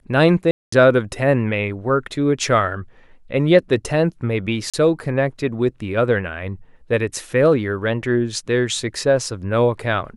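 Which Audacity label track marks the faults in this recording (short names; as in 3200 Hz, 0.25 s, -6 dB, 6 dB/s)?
0.510000	0.720000	gap 0.214 s
4.700000	4.740000	gap 36 ms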